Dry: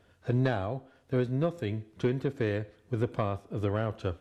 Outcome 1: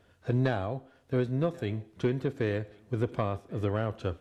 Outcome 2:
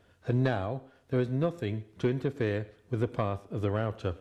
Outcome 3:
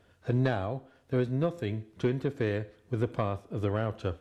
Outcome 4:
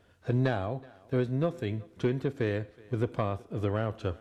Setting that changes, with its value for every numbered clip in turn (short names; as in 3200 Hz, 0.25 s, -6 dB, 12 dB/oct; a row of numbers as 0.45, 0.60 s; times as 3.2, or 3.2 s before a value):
thinning echo, time: 1086, 111, 64, 373 ms